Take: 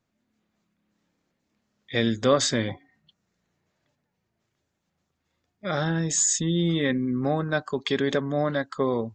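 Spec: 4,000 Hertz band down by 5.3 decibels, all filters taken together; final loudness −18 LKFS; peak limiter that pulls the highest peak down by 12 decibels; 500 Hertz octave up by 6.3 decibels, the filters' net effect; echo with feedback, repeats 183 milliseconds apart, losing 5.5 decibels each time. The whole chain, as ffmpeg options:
ffmpeg -i in.wav -af "equalizer=frequency=500:width_type=o:gain=7.5,equalizer=frequency=4000:width_type=o:gain=-6.5,alimiter=limit=-16.5dB:level=0:latency=1,aecho=1:1:183|366|549|732|915|1098|1281:0.531|0.281|0.149|0.079|0.0419|0.0222|0.0118,volume=7dB" out.wav

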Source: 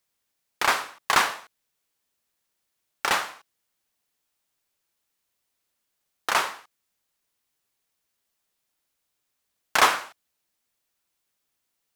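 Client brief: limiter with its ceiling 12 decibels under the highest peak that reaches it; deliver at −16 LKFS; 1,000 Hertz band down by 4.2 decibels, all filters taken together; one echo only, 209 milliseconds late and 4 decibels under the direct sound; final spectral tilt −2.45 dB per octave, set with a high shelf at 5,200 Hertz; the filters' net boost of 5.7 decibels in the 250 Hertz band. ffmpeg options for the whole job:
ffmpeg -i in.wav -af "equalizer=frequency=250:width_type=o:gain=8,equalizer=frequency=1000:width_type=o:gain=-5.5,highshelf=frequency=5200:gain=-3.5,alimiter=limit=-19dB:level=0:latency=1,aecho=1:1:209:0.631,volume=16.5dB" out.wav

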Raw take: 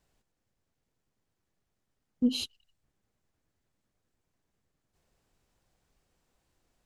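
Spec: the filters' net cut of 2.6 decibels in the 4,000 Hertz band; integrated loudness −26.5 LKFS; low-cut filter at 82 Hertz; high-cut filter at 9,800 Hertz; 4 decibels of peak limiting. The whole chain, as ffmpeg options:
ffmpeg -i in.wav -af "highpass=82,lowpass=9800,equalizer=frequency=4000:width_type=o:gain=-3,volume=7.5dB,alimiter=limit=-12.5dB:level=0:latency=1" out.wav

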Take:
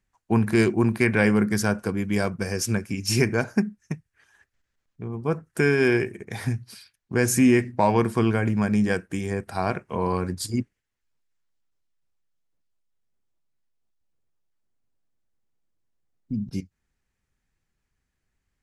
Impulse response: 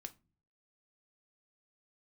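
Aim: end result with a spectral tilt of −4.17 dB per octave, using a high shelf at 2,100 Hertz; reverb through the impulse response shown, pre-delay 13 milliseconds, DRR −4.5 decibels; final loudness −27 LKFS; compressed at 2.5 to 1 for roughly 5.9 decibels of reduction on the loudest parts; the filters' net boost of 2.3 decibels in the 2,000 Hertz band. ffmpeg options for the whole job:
-filter_complex "[0:a]equalizer=frequency=2000:width_type=o:gain=8,highshelf=frequency=2100:gain=-9,acompressor=threshold=-23dB:ratio=2.5,asplit=2[link_01][link_02];[1:a]atrim=start_sample=2205,adelay=13[link_03];[link_02][link_03]afir=irnorm=-1:irlink=0,volume=9.5dB[link_04];[link_01][link_04]amix=inputs=2:normalize=0,volume=-4.5dB"

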